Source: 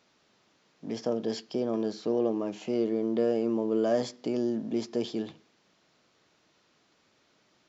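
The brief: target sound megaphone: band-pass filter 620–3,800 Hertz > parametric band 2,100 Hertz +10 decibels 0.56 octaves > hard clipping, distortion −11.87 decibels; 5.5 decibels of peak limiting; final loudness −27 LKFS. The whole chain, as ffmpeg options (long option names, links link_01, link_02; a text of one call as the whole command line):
ffmpeg -i in.wav -af "alimiter=limit=-20dB:level=0:latency=1,highpass=620,lowpass=3800,equalizer=frequency=2100:width_type=o:width=0.56:gain=10,asoftclip=type=hard:threshold=-33dB,volume=13dB" out.wav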